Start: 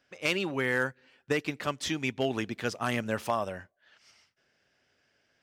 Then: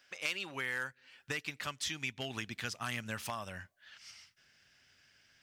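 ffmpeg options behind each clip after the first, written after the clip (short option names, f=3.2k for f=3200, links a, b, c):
-af "tiltshelf=f=810:g=-8.5,acompressor=threshold=-43dB:ratio=2,asubboost=boost=6:cutoff=200"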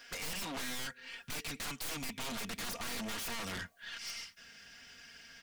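-af "aecho=1:1:4.3:0.78,aeval=exprs='(tanh(126*val(0)+0.8)-tanh(0.8))/126':c=same,aeval=exprs='0.0133*sin(PI/2*2.82*val(0)/0.0133)':c=same,volume=2dB"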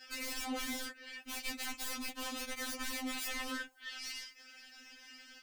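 -af "afftfilt=real='hypot(re,im)*cos(2*PI*random(0))':imag='hypot(re,im)*sin(2*PI*random(1))':win_size=512:overlap=0.75,tremolo=f=34:d=0.519,afftfilt=real='re*3.46*eq(mod(b,12),0)':imag='im*3.46*eq(mod(b,12),0)':win_size=2048:overlap=0.75,volume=10.5dB"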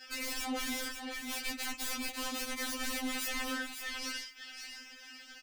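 -filter_complex "[0:a]asplit=2[a][b];[b]asoftclip=type=hard:threshold=-37.5dB,volume=-7dB[c];[a][c]amix=inputs=2:normalize=0,aecho=1:1:546:0.447"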